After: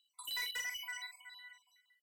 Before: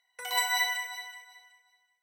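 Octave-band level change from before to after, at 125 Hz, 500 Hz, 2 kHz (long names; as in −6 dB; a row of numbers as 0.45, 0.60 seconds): can't be measured, −18.5 dB, −10.5 dB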